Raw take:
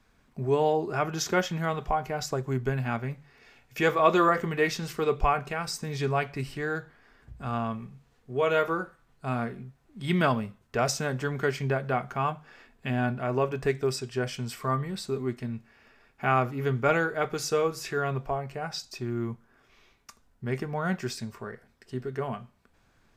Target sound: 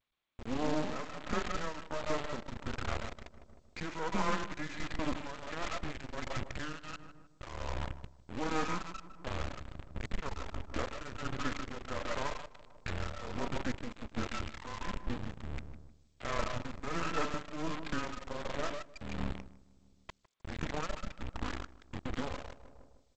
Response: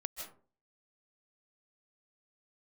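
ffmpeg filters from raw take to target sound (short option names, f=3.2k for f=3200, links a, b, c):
-filter_complex "[0:a]adynamicequalizer=threshold=0.00631:dfrequency=120:dqfactor=0.99:tfrequency=120:tqfactor=0.99:attack=5:release=100:ratio=0.375:range=2.5:mode=cutabove:tftype=bell,bandreject=f=150:t=h:w=4,bandreject=f=300:t=h:w=4,bandreject=f=450:t=h:w=4,bandreject=f=600:t=h:w=4,bandreject=f=750:t=h:w=4,bandreject=f=900:t=h:w=4,bandreject=f=1.05k:t=h:w=4,bandreject=f=1.2k:t=h:w=4,bandreject=f=1.35k:t=h:w=4,bandreject=f=1.5k:t=h:w=4,bandreject=f=1.65k:t=h:w=4,bandreject=f=1.8k:t=h:w=4,bandreject=f=1.95k:t=h:w=4,bandreject=f=2.1k:t=h:w=4,bandreject=f=2.25k:t=h:w=4,asubboost=boost=3:cutoff=230,acompressor=threshold=-38dB:ratio=2.5,asoftclip=type=tanh:threshold=-29.5dB,highpass=f=190:t=q:w=0.5412,highpass=f=190:t=q:w=1.307,lowpass=f=2.5k:t=q:w=0.5176,lowpass=f=2.5k:t=q:w=0.7071,lowpass=f=2.5k:t=q:w=1.932,afreqshift=-160[a];[1:a]atrim=start_sample=2205,afade=t=out:st=0.21:d=0.01,atrim=end_sample=9702[b];[a][b]afir=irnorm=-1:irlink=0,acrusher=bits=5:dc=4:mix=0:aa=0.000001,asplit=2[c][d];[d]adelay=155,lowpass=f=1.2k:p=1,volume=-12dB,asplit=2[e][f];[f]adelay=155,lowpass=f=1.2k:p=1,volume=0.54,asplit=2[g][h];[h]adelay=155,lowpass=f=1.2k:p=1,volume=0.54,asplit=2[i][j];[j]adelay=155,lowpass=f=1.2k:p=1,volume=0.54,asplit=2[k][l];[l]adelay=155,lowpass=f=1.2k:p=1,volume=0.54,asplit=2[m][n];[n]adelay=155,lowpass=f=1.2k:p=1,volume=0.54[o];[c][e][g][i][k][m][o]amix=inputs=7:normalize=0,tremolo=f=1.4:d=0.62,volume=11.5dB" -ar 16000 -c:a g722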